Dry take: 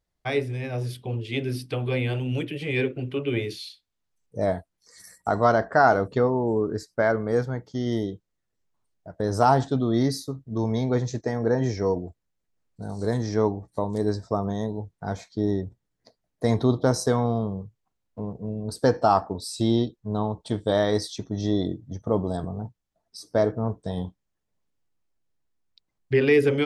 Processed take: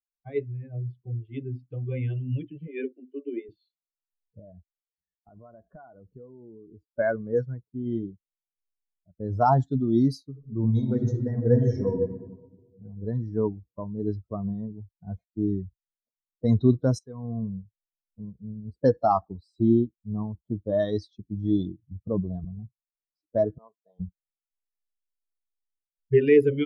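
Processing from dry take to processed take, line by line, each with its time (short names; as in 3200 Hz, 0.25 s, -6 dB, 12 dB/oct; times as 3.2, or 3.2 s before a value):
2.67–3.49 elliptic high-pass 230 Hz
4.39–6.87 compressor 4:1, threshold -30 dBFS
10.23–12.01 reverb throw, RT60 3 s, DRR 0.5 dB
16.99–17.43 fade in, from -16.5 dB
19.61–20.8 bell 4400 Hz -12 dB 1.1 oct
23.58–24 HPF 600 Hz
whole clip: per-bin expansion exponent 2; low-pass opened by the level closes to 540 Hz, open at -22 dBFS; tilt shelf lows +5.5 dB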